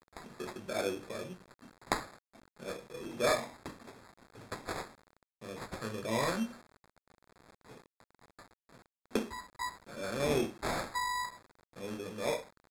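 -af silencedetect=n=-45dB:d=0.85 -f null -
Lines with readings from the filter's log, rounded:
silence_start: 6.57
silence_end: 7.70 | silence_duration: 1.12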